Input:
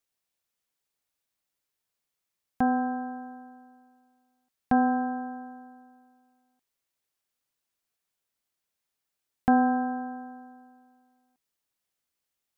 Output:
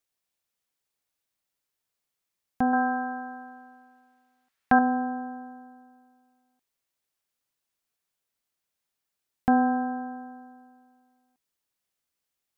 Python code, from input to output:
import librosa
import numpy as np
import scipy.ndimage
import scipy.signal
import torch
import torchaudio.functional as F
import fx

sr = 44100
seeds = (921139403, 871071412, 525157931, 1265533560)

y = fx.peak_eq(x, sr, hz=1700.0, db=10.5, octaves=2.2, at=(2.73, 4.79))